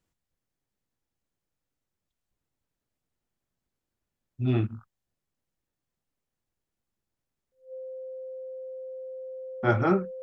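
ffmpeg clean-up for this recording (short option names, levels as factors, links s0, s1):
-af "bandreject=f=520:w=30"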